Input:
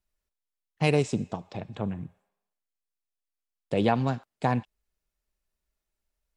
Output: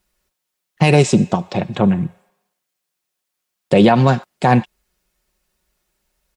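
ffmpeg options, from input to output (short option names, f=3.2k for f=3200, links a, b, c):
-af "highpass=f=73:p=1,aecho=1:1:5.5:0.42,alimiter=level_in=17dB:limit=-1dB:release=50:level=0:latency=1,volume=-1dB"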